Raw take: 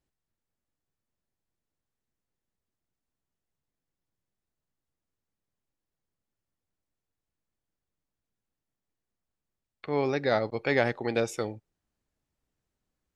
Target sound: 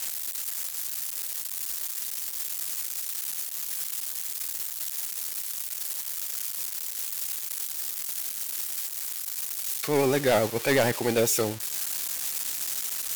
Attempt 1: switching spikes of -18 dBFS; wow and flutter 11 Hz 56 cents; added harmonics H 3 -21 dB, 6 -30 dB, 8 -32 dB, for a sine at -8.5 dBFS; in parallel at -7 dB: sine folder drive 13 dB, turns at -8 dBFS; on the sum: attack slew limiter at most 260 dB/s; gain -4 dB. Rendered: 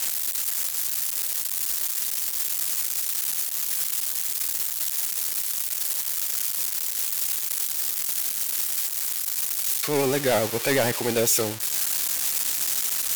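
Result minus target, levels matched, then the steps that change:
switching spikes: distortion +6 dB
change: switching spikes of -24.5 dBFS

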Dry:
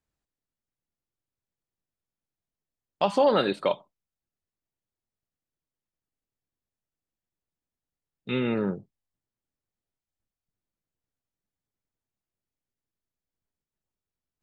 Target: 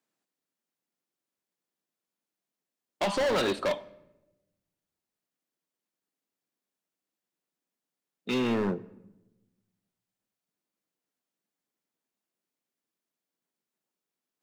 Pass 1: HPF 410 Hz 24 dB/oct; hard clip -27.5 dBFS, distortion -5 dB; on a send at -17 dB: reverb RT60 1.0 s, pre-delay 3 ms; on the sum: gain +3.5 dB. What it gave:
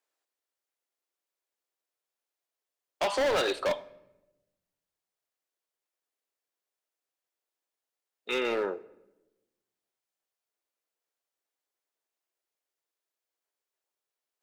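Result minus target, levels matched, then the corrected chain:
250 Hz band -8.0 dB
HPF 190 Hz 24 dB/oct; hard clip -27.5 dBFS, distortion -5 dB; on a send at -17 dB: reverb RT60 1.0 s, pre-delay 3 ms; on the sum: gain +3.5 dB

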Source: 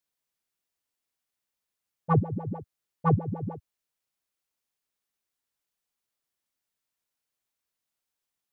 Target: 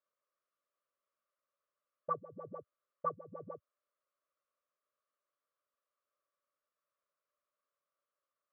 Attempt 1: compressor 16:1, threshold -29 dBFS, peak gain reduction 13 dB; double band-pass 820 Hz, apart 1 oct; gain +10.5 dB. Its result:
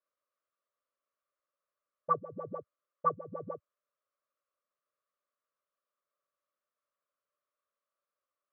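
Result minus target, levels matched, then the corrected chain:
compressor: peak gain reduction -7 dB
compressor 16:1, threshold -36.5 dBFS, peak gain reduction 20 dB; double band-pass 820 Hz, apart 1 oct; gain +10.5 dB

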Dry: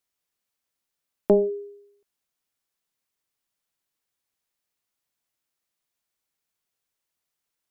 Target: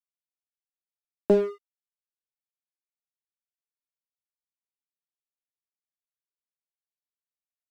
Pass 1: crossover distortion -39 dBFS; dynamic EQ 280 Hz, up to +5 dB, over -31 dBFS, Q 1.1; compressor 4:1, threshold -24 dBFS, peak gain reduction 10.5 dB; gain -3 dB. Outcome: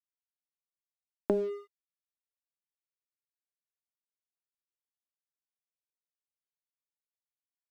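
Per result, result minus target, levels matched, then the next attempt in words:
compressor: peak gain reduction +10.5 dB; crossover distortion: distortion -6 dB
crossover distortion -39 dBFS; dynamic EQ 280 Hz, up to +5 dB, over -31 dBFS, Q 1.1; gain -3 dB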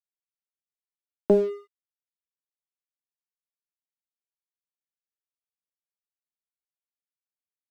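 crossover distortion: distortion -6 dB
crossover distortion -32 dBFS; dynamic EQ 280 Hz, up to +5 dB, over -31 dBFS, Q 1.1; gain -3 dB

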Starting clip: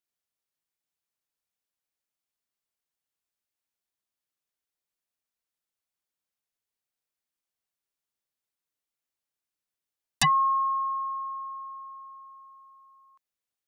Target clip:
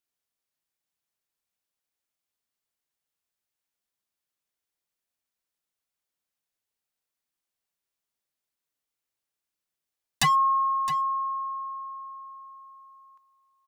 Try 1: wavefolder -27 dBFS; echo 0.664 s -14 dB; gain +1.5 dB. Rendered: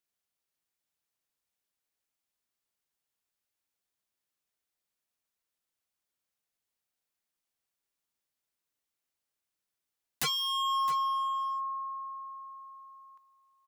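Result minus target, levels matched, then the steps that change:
wavefolder: distortion +26 dB
change: wavefolder -19 dBFS

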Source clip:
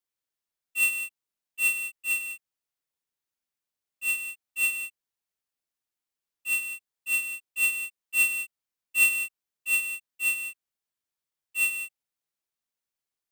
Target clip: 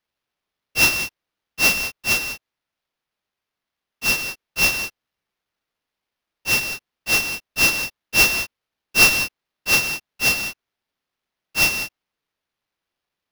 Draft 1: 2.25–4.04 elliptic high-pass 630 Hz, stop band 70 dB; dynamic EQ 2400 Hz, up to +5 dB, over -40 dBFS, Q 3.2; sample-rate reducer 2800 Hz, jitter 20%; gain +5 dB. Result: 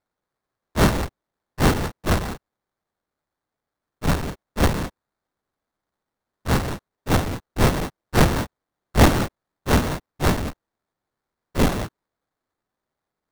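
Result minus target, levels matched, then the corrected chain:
sample-rate reducer: distortion +17 dB
2.25–4.04 elliptic high-pass 630 Hz, stop band 70 dB; dynamic EQ 2400 Hz, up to +5 dB, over -40 dBFS, Q 3.2; sample-rate reducer 8100 Hz, jitter 20%; gain +5 dB

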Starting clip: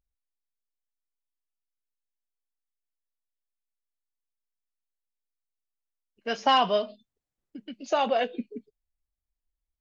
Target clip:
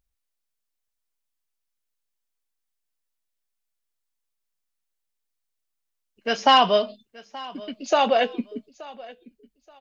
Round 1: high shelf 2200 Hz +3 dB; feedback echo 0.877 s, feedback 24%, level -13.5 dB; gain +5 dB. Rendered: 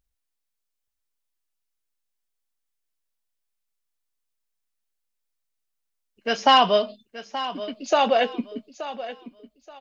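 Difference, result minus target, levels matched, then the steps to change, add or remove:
echo-to-direct +7 dB
change: feedback echo 0.877 s, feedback 24%, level -20.5 dB

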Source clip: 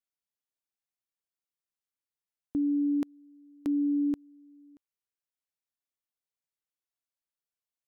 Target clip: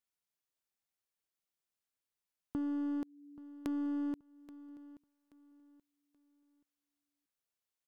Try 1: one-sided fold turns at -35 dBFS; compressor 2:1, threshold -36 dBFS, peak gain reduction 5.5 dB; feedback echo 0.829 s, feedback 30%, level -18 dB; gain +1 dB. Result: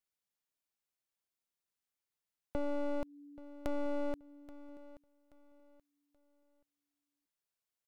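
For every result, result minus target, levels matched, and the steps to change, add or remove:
one-sided fold: distortion +24 dB; compressor: peak gain reduction -3.5 dB
change: one-sided fold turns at -25 dBFS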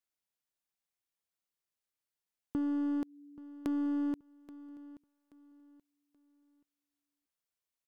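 compressor: peak gain reduction -3.5 dB
change: compressor 2:1, threshold -42.5 dBFS, peak gain reduction 9 dB

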